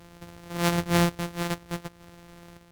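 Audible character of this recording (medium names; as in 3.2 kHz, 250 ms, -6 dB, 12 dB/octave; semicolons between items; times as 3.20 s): a buzz of ramps at a fixed pitch in blocks of 256 samples; random-step tremolo; AAC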